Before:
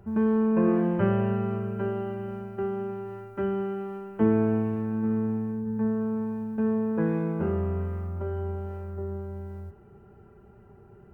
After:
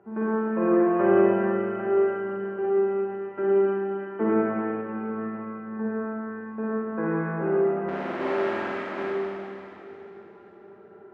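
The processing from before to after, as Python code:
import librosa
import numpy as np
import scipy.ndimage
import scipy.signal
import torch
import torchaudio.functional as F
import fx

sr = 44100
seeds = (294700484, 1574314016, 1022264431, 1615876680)

y = fx.halfwave_hold(x, sr, at=(7.88, 9.03))
y = scipy.signal.sosfilt(scipy.signal.cheby1(2, 1.0, [310.0, 1900.0], 'bandpass', fs=sr, output='sos'), y)
y = fx.echo_feedback(y, sr, ms=466, feedback_pct=54, wet_db=-19)
y = fx.rev_schroeder(y, sr, rt60_s=2.8, comb_ms=38, drr_db=-6.5)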